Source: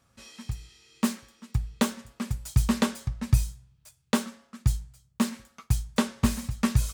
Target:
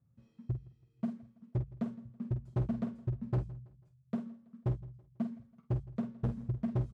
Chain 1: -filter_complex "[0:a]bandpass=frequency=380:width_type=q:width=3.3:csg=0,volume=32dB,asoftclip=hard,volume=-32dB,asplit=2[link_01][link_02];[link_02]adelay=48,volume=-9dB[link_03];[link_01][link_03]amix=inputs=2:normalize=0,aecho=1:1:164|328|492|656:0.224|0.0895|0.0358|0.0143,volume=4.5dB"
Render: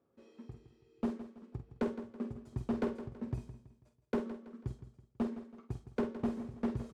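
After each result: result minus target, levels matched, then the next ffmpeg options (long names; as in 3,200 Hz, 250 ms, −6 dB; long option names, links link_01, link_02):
125 Hz band −8.0 dB; echo-to-direct +8.5 dB
-filter_complex "[0:a]bandpass=frequency=130:width_type=q:width=3.3:csg=0,volume=32dB,asoftclip=hard,volume=-32dB,asplit=2[link_01][link_02];[link_02]adelay=48,volume=-9dB[link_03];[link_01][link_03]amix=inputs=2:normalize=0,aecho=1:1:164|328|492|656:0.224|0.0895|0.0358|0.0143,volume=4.5dB"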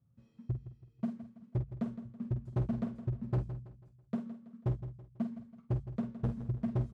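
echo-to-direct +8.5 dB
-filter_complex "[0:a]bandpass=frequency=130:width_type=q:width=3.3:csg=0,volume=32dB,asoftclip=hard,volume=-32dB,asplit=2[link_01][link_02];[link_02]adelay=48,volume=-9dB[link_03];[link_01][link_03]amix=inputs=2:normalize=0,aecho=1:1:164|328|492:0.0841|0.0337|0.0135,volume=4.5dB"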